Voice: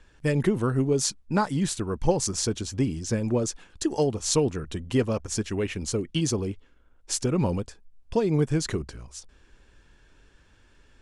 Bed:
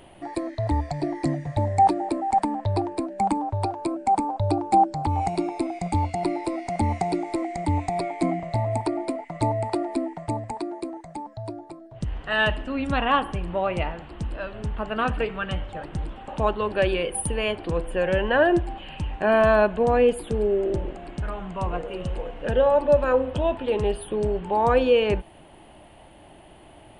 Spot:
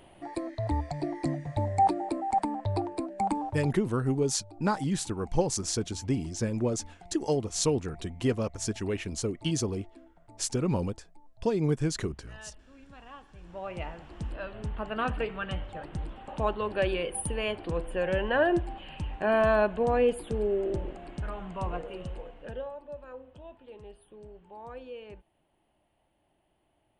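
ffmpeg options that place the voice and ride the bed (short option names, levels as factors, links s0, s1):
-filter_complex "[0:a]adelay=3300,volume=0.668[s0];[1:a]volume=6.31,afade=t=out:st=3.44:d=0.34:silence=0.0841395,afade=t=in:st=13.3:d=0.96:silence=0.0841395,afade=t=out:st=21.7:d=1.06:silence=0.11885[s1];[s0][s1]amix=inputs=2:normalize=0"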